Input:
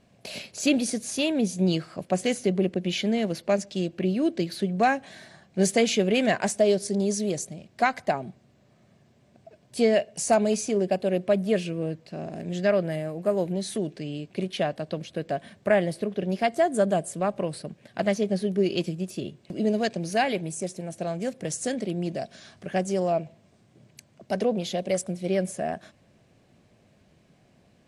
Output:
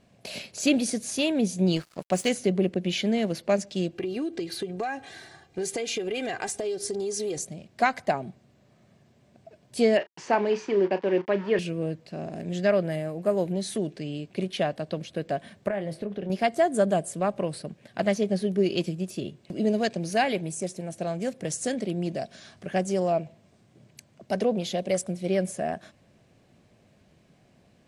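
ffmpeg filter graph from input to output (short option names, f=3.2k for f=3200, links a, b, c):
-filter_complex "[0:a]asettb=1/sr,asplit=3[a][b][c];[a]atrim=end=1.764[d];[b]atrim=start=1.76:end=2.29,asetpts=PTS-STARTPTS,afade=t=in:d=0.004:c=qsin,afade=t=out:st=0.526:d=0.004:c=qsin,highshelf=f=2.2k:g=6,aeval=exprs='sgn(val(0))*max(abs(val(0))-0.00794,0)':c=same[e];[c]atrim=start=2.286[f];[d][e]acrossfade=d=0.004:c1=hsin:c2=qsin[g];[g][f]acrossfade=d=0.004:c1=qsin:c2=hsin,asettb=1/sr,asplit=3[h][i][j];[h]atrim=end=3.954[k];[i]atrim=start=3.95:end=7.38,asetpts=PTS-STARTPTS,afade=t=in:d=0.004:c=qsin,afade=t=out:st=3.426:d=0.004:c=qsin,aecho=1:1:2.5:0.71,atrim=end_sample=151263,acompressor=threshold=-26dB:ratio=12:attack=3.2:release=140:knee=1:detection=peak[l];[j]atrim=start=7.376[m];[k][l]acrossfade=d=0.004:c1=hsin:c2=qsin[n];[n][m]acrossfade=d=0.004:c1=qsin:c2=hsin,asettb=1/sr,asplit=3[o][p][q];[o]atrim=end=9.974[r];[p]atrim=start=9.97:end=11.59,asetpts=PTS-STARTPTS,afade=t=in:d=0.004:c=qsin,afade=t=out:st=1.616:d=0.004:c=qsin,aeval=exprs='val(0)*gte(abs(val(0)),0.0158)':c=same,highpass=190,equalizer=f=220:t=q:w=4:g=-5,equalizer=f=360:t=q:w=4:g=6,equalizer=f=650:t=q:w=4:g=-8,equalizer=f=940:t=q:w=4:g=9,equalizer=f=1.8k:t=q:w=4:g=5,equalizer=f=3.9k:t=q:w=4:g=-7,lowpass=f=4.3k:w=0.5412,lowpass=f=4.3k:w=1.3066,asplit=2[s][t];[t]adelay=35,volume=-13dB[u];[s][u]amix=inputs=2:normalize=0,atrim=end_sample=71442[v];[q]atrim=start=11.586[w];[r][v]acrossfade=d=0.004:c1=hsin:c2=qsin[x];[x][w]acrossfade=d=0.004:c1=qsin:c2=hsin,asettb=1/sr,asplit=3[y][z][aa];[y]atrim=end=15.684[ab];[z]atrim=start=15.68:end=16.3,asetpts=PTS-STARTPTS,afade=t=in:d=0.004:c=qsin,afade=t=out:st=0.616:d=0.004:c=qsin,highshelf=f=3.9k:g=-8.5,acompressor=threshold=-27dB:ratio=6:attack=3.2:release=140:knee=1:detection=peak,asplit=2[ac][ad];[ad]adelay=25,volume=-11dB[ae];[ac][ae]amix=inputs=2:normalize=0,atrim=end_sample=27342[af];[aa]atrim=start=16.296[ag];[ab][af]acrossfade=d=0.004:c1=hsin:c2=qsin[ah];[ah][ag]acrossfade=d=0.004:c1=qsin:c2=hsin"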